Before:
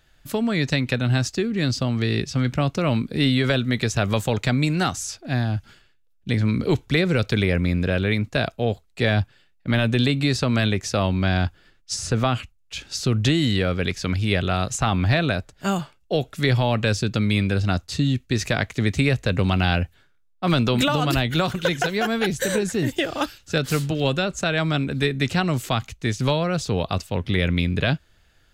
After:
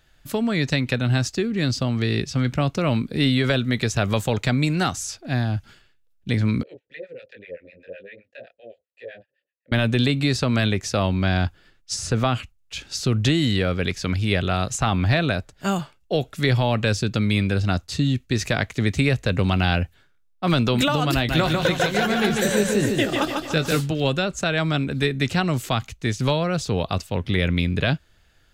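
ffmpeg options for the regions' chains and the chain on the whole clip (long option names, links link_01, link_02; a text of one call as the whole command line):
ffmpeg -i in.wav -filter_complex "[0:a]asettb=1/sr,asplit=3[link_01][link_02][link_03];[link_01]atrim=end=6.634[link_04];[link_02]atrim=start=6.63:end=9.72,asetpts=PTS-STARTPTS,afade=type=in:duration=0.004:curve=qsin,afade=type=out:start_time=3.086:duration=0.004:curve=qsin,flanger=delay=19.5:depth=5.9:speed=2.5,asplit=3[link_05][link_06][link_07];[link_05]bandpass=frequency=530:width_type=q:width=8,volume=0dB[link_08];[link_06]bandpass=frequency=1840:width_type=q:width=8,volume=-6dB[link_09];[link_07]bandpass=frequency=2480:width_type=q:width=8,volume=-9dB[link_10];[link_08][link_09][link_10]amix=inputs=3:normalize=0,acrossover=split=740[link_11][link_12];[link_11]aeval=exprs='val(0)*(1-1/2+1/2*cos(2*PI*7.8*n/s))':channel_layout=same[link_13];[link_12]aeval=exprs='val(0)*(1-1/2-1/2*cos(2*PI*7.8*n/s))':channel_layout=same[link_14];[link_13][link_14]amix=inputs=2:normalize=0[link_15];[link_03]atrim=start=9.716[link_16];[link_04][link_15]acrossfade=duration=0.004:curve1=hsin:curve2=qsin[link_17];[link_17][link_16]acrossfade=duration=0.004:curve1=qsin:curve2=hsin,asettb=1/sr,asplit=3[link_18][link_19][link_20];[link_18]atrim=end=21.144[link_21];[link_19]atrim=start=21.14:end=23.81,asetpts=PTS-STARTPTS,afade=type=in:duration=0.004:curve=qsin,afade=type=out:start_time=2.666:duration=0.004:curve=qsin,asplit=2[link_22][link_23];[link_23]adelay=19,volume=-12dB[link_24];[link_22][link_24]amix=inputs=2:normalize=0,atrim=end_sample=117747,aecho=1:1:147|294|441|588|735|882:0.668|0.327|0.16|0.0786|0.0385|0.0189,atrim=end_sample=117747[link_25];[link_20]atrim=start=23.806[link_26];[link_21][link_25]acrossfade=duration=0.004:curve1=hsin:curve2=qsin[link_27];[link_27][link_26]acrossfade=duration=0.004:curve1=qsin:curve2=hsin" out.wav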